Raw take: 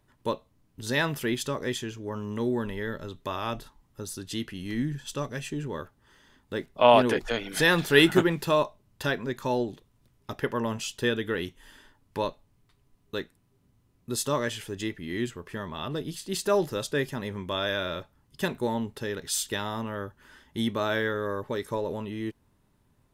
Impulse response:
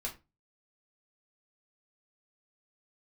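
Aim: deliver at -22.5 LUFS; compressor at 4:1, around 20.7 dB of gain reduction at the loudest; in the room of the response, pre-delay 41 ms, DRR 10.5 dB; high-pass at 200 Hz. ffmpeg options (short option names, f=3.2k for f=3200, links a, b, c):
-filter_complex "[0:a]highpass=200,acompressor=threshold=-39dB:ratio=4,asplit=2[a][b];[1:a]atrim=start_sample=2205,adelay=41[c];[b][c]afir=irnorm=-1:irlink=0,volume=-11dB[d];[a][d]amix=inputs=2:normalize=0,volume=19dB"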